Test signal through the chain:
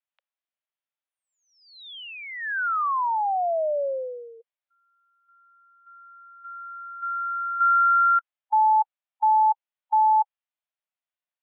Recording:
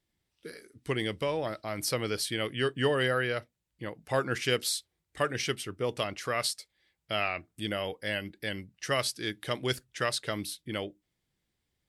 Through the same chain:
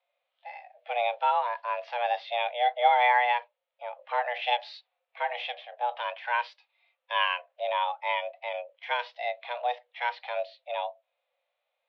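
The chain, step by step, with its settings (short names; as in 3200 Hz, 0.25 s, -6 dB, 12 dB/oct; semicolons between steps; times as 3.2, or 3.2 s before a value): mistuned SSB +360 Hz 180–3200 Hz; harmonic-percussive split percussive -15 dB; gain +8 dB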